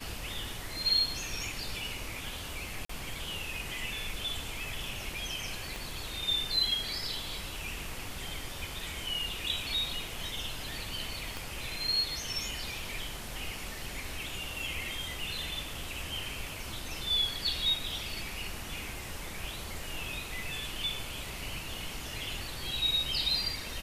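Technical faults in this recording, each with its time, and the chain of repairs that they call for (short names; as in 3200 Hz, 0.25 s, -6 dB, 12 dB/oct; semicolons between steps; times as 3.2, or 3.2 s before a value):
2.85–2.89 gap 44 ms
5.76 pop
11.37 pop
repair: de-click; interpolate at 2.85, 44 ms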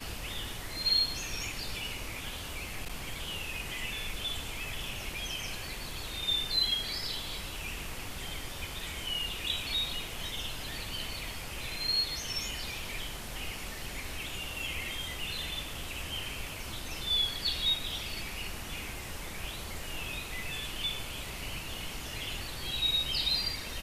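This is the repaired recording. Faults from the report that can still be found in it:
5.76 pop
11.37 pop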